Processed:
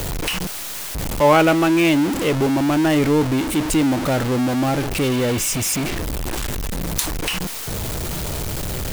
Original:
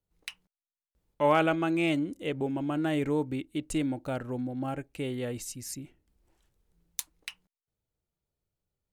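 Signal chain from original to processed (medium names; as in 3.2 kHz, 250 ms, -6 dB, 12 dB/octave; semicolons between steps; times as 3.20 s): jump at every zero crossing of -26 dBFS; spectral replace 5.14–5.81 s, 2.1–4.7 kHz; trim +8 dB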